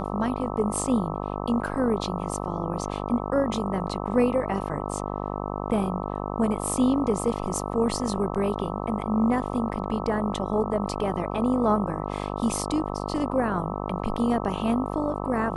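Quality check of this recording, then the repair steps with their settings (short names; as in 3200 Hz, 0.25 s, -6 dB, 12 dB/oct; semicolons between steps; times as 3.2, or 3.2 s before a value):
buzz 50 Hz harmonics 26 -31 dBFS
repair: de-hum 50 Hz, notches 26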